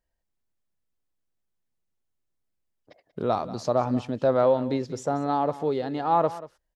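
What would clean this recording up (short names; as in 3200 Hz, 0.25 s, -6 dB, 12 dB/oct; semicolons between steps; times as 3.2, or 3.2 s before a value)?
inverse comb 0.186 s -16.5 dB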